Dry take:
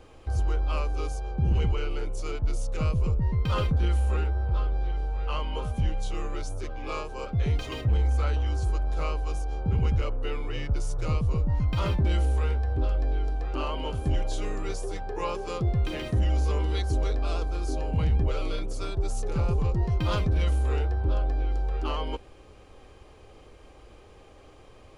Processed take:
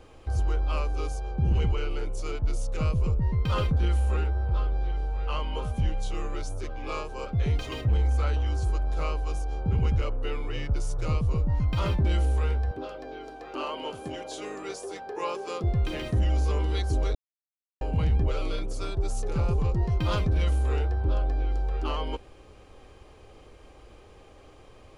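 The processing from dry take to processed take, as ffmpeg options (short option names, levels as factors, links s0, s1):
-filter_complex "[0:a]asettb=1/sr,asplit=3[s0][s1][s2];[s0]atrim=end=12.714[s3];[s1]atrim=start=12.71:end=15.64,asetpts=PTS-STARTPTS,afade=t=in:d=0.004:c=qsin,afade=t=out:st=2.926:d=0.004:c=qsin,highpass=270[s4];[s2]atrim=start=15.636[s5];[s3][s4]acrossfade=d=0.004:c1=hsin:c2=qsin[s6];[s6][s5]acrossfade=d=0.004:c1=qsin:c2=hsin,asplit=3[s7][s8][s9];[s7]atrim=end=17.15,asetpts=PTS-STARTPTS,afade=t=out:st=17.146:d=0.004:c=hsin[s10];[s8]atrim=start=17.15:end=17.81,asetpts=PTS-STARTPTS,volume=0[s11];[s9]atrim=start=17.81,asetpts=PTS-STARTPTS,afade=t=in:d=0.004:c=hsin[s12];[s10][s11][s12]concat=n=3:v=0:a=1"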